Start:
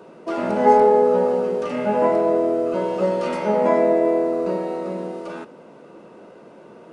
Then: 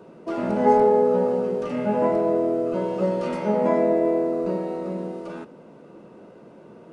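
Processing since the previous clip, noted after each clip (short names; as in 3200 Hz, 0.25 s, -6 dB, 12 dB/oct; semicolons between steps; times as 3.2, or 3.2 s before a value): low shelf 280 Hz +10 dB; gain -5.5 dB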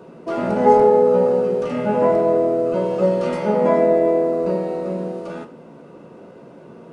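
reverb, pre-delay 3 ms, DRR 8 dB; gain +4 dB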